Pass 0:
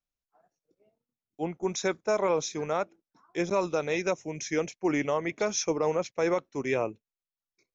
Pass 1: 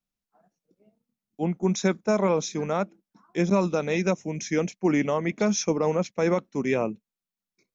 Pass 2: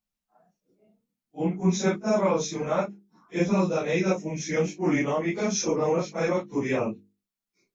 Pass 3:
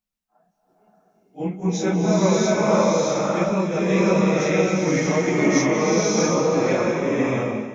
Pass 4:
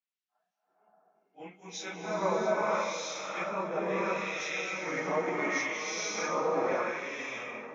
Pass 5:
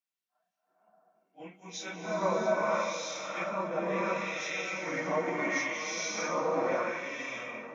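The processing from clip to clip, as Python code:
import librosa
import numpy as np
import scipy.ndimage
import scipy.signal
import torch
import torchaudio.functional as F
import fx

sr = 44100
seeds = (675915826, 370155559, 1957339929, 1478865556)

y1 = fx.peak_eq(x, sr, hz=200.0, db=14.0, octaves=0.64)
y1 = y1 * librosa.db_to_amplitude(1.5)
y2 = fx.phase_scramble(y1, sr, seeds[0], window_ms=100)
y2 = fx.hum_notches(y2, sr, base_hz=50, count=9)
y3 = fx.rev_bloom(y2, sr, seeds[1], attack_ms=630, drr_db=-6.0)
y4 = fx.filter_lfo_bandpass(y3, sr, shape='sine', hz=0.72, low_hz=940.0, high_hz=3400.0, q=1.1)
y4 = y4 + 10.0 ** (-18.5 / 20.0) * np.pad(y4, (int(1168 * sr / 1000.0), 0))[:len(y4)]
y4 = y4 * librosa.db_to_amplitude(-3.5)
y5 = fx.notch_comb(y4, sr, f0_hz=420.0)
y5 = y5 * librosa.db_to_amplitude(1.0)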